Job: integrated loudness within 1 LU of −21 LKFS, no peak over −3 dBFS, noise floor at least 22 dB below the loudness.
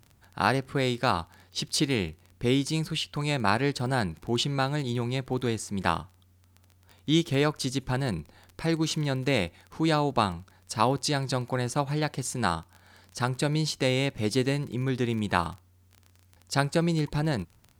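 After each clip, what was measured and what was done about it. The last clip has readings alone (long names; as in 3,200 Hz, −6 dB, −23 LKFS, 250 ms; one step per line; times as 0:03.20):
crackle rate 22 per second; integrated loudness −28.0 LKFS; sample peak −6.5 dBFS; target loudness −21.0 LKFS
→ click removal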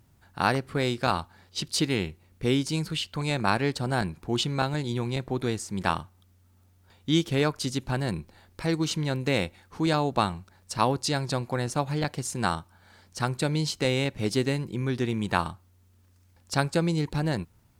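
crackle rate 0 per second; integrated loudness −28.0 LKFS; sample peak −6.5 dBFS; target loudness −21.0 LKFS
→ level +7 dB
brickwall limiter −3 dBFS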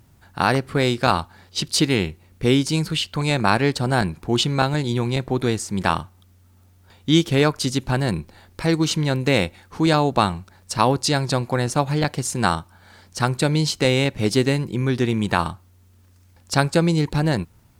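integrated loudness −21.5 LKFS; sample peak −3.0 dBFS; background noise floor −54 dBFS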